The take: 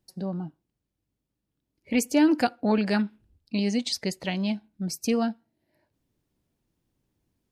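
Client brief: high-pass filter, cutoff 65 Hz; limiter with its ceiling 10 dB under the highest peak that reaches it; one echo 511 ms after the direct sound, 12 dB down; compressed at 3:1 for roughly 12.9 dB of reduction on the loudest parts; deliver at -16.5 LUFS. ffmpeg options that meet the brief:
-af "highpass=65,acompressor=threshold=0.0178:ratio=3,alimiter=level_in=2.37:limit=0.0631:level=0:latency=1,volume=0.422,aecho=1:1:511:0.251,volume=17.8"

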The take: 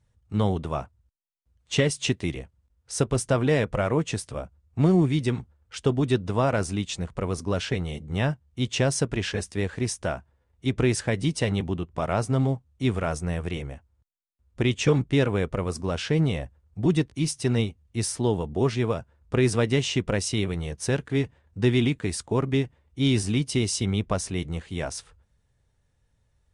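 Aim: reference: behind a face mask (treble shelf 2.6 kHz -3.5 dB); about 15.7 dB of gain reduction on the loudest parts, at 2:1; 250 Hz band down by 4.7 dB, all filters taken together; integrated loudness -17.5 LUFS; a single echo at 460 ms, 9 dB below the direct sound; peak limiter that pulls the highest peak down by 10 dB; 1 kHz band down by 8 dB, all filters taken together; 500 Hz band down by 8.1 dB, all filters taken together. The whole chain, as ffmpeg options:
-af "equalizer=f=250:t=o:g=-4,equalizer=f=500:t=o:g=-7.5,equalizer=f=1000:t=o:g=-7.5,acompressor=threshold=0.00316:ratio=2,alimiter=level_in=4.22:limit=0.0631:level=0:latency=1,volume=0.237,highshelf=f=2600:g=-3.5,aecho=1:1:460:0.355,volume=29.9"

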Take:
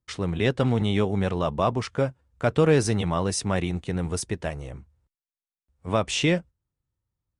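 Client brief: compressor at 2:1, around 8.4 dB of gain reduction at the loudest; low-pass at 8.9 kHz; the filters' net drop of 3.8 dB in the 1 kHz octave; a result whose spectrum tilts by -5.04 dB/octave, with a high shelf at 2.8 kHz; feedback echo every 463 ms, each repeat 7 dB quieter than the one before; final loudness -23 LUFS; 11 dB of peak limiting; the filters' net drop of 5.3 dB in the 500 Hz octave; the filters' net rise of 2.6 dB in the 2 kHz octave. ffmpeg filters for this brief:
-af "lowpass=8900,equalizer=f=500:t=o:g=-5.5,equalizer=f=1000:t=o:g=-4.5,equalizer=f=2000:t=o:g=6,highshelf=f=2800:g=-3,acompressor=threshold=0.02:ratio=2,alimiter=level_in=1.68:limit=0.0631:level=0:latency=1,volume=0.596,aecho=1:1:463|926|1389|1852|2315:0.447|0.201|0.0905|0.0407|0.0183,volume=5.96"

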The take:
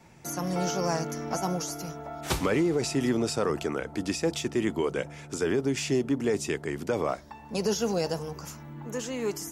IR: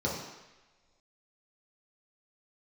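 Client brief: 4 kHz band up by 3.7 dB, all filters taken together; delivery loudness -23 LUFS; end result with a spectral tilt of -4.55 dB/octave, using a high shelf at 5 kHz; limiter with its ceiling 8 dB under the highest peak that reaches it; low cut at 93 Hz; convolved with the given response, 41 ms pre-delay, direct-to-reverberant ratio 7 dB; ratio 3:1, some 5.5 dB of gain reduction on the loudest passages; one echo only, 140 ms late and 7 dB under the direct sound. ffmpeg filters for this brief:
-filter_complex "[0:a]highpass=93,equalizer=f=4000:t=o:g=8,highshelf=f=5000:g=-5.5,acompressor=threshold=0.0355:ratio=3,alimiter=level_in=1.12:limit=0.0631:level=0:latency=1,volume=0.891,aecho=1:1:140:0.447,asplit=2[s0][s1];[1:a]atrim=start_sample=2205,adelay=41[s2];[s1][s2]afir=irnorm=-1:irlink=0,volume=0.168[s3];[s0][s3]amix=inputs=2:normalize=0,volume=2.99"

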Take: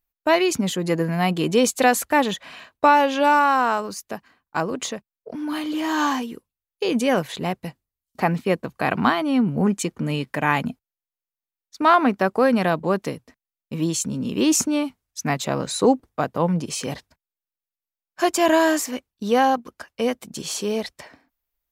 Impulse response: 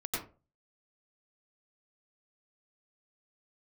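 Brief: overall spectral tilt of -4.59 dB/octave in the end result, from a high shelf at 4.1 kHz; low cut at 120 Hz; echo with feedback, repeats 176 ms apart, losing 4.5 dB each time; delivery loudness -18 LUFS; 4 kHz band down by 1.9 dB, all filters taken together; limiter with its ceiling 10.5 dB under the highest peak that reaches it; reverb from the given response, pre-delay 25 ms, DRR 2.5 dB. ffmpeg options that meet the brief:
-filter_complex "[0:a]highpass=120,equalizer=f=4000:t=o:g=-5,highshelf=f=4100:g=4,alimiter=limit=0.211:level=0:latency=1,aecho=1:1:176|352|528|704|880|1056|1232|1408|1584:0.596|0.357|0.214|0.129|0.0772|0.0463|0.0278|0.0167|0.01,asplit=2[s0][s1];[1:a]atrim=start_sample=2205,adelay=25[s2];[s1][s2]afir=irnorm=-1:irlink=0,volume=0.473[s3];[s0][s3]amix=inputs=2:normalize=0,volume=1.41"

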